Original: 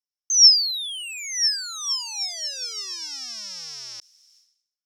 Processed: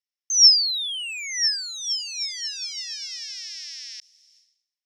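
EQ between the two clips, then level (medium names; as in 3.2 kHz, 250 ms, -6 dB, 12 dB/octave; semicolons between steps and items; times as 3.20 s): elliptic high-pass 1.8 kHz, stop band 40 dB; treble shelf 4.6 kHz -9 dB; treble shelf 10 kHz -10 dB; +6.5 dB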